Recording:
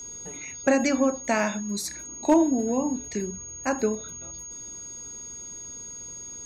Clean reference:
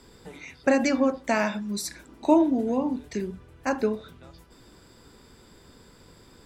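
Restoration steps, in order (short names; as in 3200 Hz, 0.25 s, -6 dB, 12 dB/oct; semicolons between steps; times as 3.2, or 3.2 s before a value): clip repair -10.5 dBFS; notch 6600 Hz, Q 30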